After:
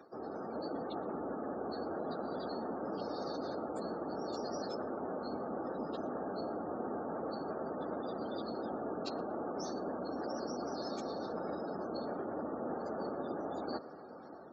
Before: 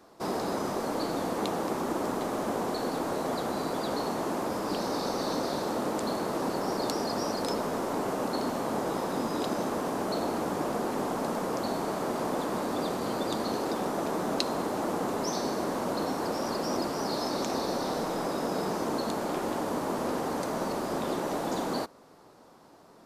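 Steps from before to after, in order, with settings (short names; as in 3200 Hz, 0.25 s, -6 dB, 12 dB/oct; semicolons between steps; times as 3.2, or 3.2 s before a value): octaver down 2 oct, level -3 dB; spectral gate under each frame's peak -20 dB strong; notch comb 1000 Hz; reverse; compressor 10:1, threshold -42 dBFS, peak gain reduction 17.5 dB; reverse; HPF 170 Hz 12 dB/oct; on a send: tape echo 0.188 s, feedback 52%, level -17 dB, low-pass 1500 Hz; on the sum: plain phase-vocoder stretch 0.63×; AGC gain up to 4 dB; gain +5.5 dB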